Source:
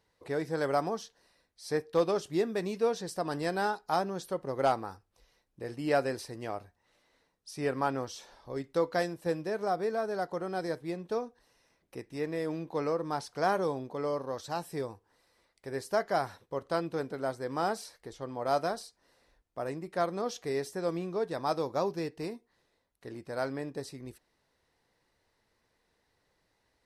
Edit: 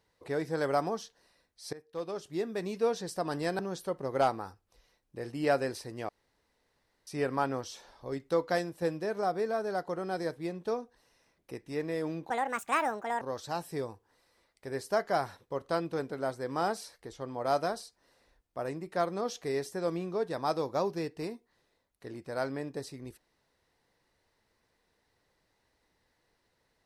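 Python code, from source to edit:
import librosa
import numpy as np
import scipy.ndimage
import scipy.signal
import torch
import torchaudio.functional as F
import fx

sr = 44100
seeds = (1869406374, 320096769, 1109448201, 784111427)

y = fx.edit(x, sr, fx.fade_in_from(start_s=1.73, length_s=1.17, floor_db=-21.5),
    fx.cut(start_s=3.59, length_s=0.44),
    fx.room_tone_fill(start_s=6.53, length_s=0.98),
    fx.speed_span(start_s=12.74, length_s=1.48, speed=1.62), tone=tone)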